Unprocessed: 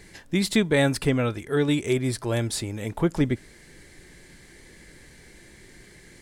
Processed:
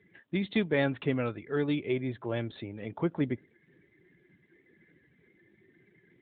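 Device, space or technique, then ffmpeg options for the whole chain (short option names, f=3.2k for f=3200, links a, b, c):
mobile call with aggressive noise cancelling: -af "highpass=f=130:p=1,afftdn=nr=15:nf=-45,volume=-5.5dB" -ar 8000 -c:a libopencore_amrnb -b:a 12200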